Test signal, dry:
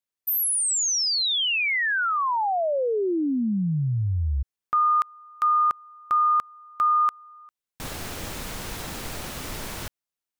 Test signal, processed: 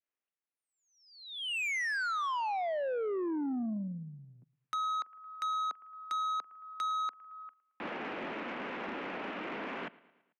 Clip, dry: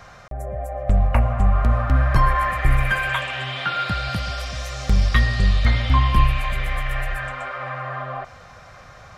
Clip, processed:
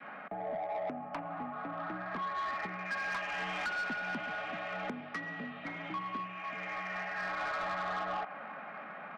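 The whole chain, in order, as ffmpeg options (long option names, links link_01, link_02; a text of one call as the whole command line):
ffmpeg -i in.wav -af "adynamicequalizer=threshold=0.0178:dfrequency=850:dqfactor=1.1:tfrequency=850:tqfactor=1.1:attack=5:release=100:ratio=0.375:range=1.5:mode=boostabove:tftype=bell,acompressor=threshold=-27dB:ratio=8:attack=18:release=562:knee=1:detection=rms,highpass=frequency=160:width_type=q:width=0.5412,highpass=frequency=160:width_type=q:width=1.307,lowpass=frequency=2700:width_type=q:width=0.5176,lowpass=frequency=2700:width_type=q:width=0.7071,lowpass=frequency=2700:width_type=q:width=1.932,afreqshift=53,aecho=1:1:111|222|333|444:0.0708|0.0389|0.0214|0.0118,asoftclip=type=tanh:threshold=-31dB" out.wav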